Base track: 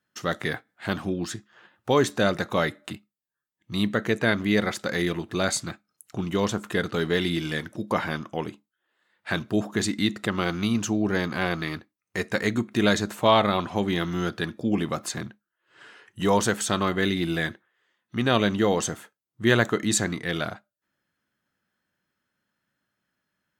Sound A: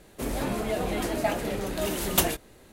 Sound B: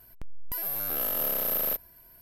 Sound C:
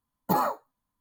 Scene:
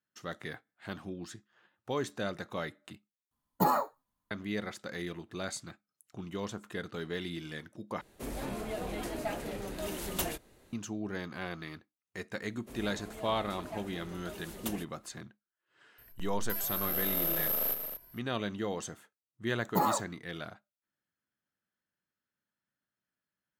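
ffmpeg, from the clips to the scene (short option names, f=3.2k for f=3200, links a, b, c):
-filter_complex "[3:a]asplit=2[a][b];[1:a]asplit=2[c][d];[0:a]volume=-13dB[e];[c]aeval=exprs='(tanh(6.31*val(0)+0.3)-tanh(0.3))/6.31':c=same[f];[2:a]aecho=1:1:139.9|227.4:0.282|0.355[g];[e]asplit=3[h][i][j];[h]atrim=end=3.314[k];[a]atrim=end=1,asetpts=PTS-STARTPTS,volume=-2dB[l];[i]atrim=start=4.306:end=8.014[m];[f]atrim=end=2.72,asetpts=PTS-STARTPTS,volume=-7.5dB[n];[j]atrim=start=10.726[o];[d]atrim=end=2.72,asetpts=PTS-STARTPTS,volume=-17dB,afade=t=in:d=0.004:c=hsin,afade=t=out:st=2.716:d=0.004:c=hsin,adelay=12480[p];[g]atrim=end=2.21,asetpts=PTS-STARTPTS,volume=-4dB,afade=t=in:d=0.004:c=hsin,afade=t=out:st=2.206:d=0.004:c=hsin,adelay=15980[q];[b]atrim=end=1,asetpts=PTS-STARTPTS,volume=-3.5dB,afade=t=in:d=0.004:c=hsin,afade=t=out:st=0.996:d=0.004:c=hsin,adelay=19460[r];[k][l]acrossfade=d=0.004:c1=hsin:c2=hsin[s];[s][m]acrossfade=d=0.004:c1=hsin:c2=hsin[t];[t][n]acrossfade=d=0.004:c1=hsin:c2=hsin[u];[u][o]acrossfade=d=0.004:c1=hsin:c2=hsin[v];[v][p][q][r]amix=inputs=4:normalize=0"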